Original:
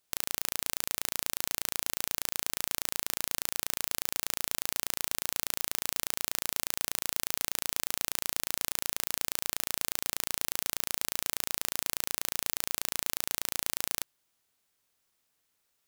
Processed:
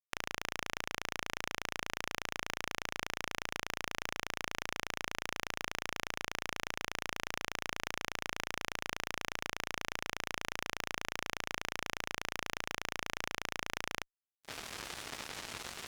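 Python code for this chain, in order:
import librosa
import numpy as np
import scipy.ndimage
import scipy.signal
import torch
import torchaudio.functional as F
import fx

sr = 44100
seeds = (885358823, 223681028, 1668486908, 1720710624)

y = fx.recorder_agc(x, sr, target_db=-10.5, rise_db_per_s=61.0, max_gain_db=30)
y = scipy.signal.sosfilt(scipy.signal.butter(2, 3100.0, 'lowpass', fs=sr, output='sos'), y)
y = fx.fuzz(y, sr, gain_db=43.0, gate_db=-51.0)
y = F.gain(torch.from_numpy(y), -7.0).numpy()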